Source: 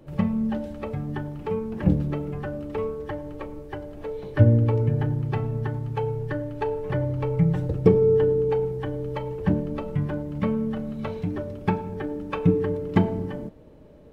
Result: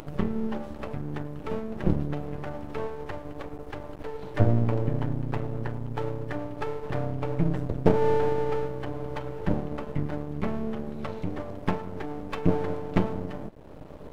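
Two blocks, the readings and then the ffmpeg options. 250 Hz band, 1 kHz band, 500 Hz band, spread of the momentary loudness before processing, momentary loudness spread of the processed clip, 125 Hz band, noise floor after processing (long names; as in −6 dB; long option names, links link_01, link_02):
−4.5 dB, 0.0 dB, −5.0 dB, 13 LU, 14 LU, −5.5 dB, −42 dBFS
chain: -af "acompressor=mode=upward:threshold=-28dB:ratio=2.5,aeval=exprs='max(val(0),0)':channel_layout=same"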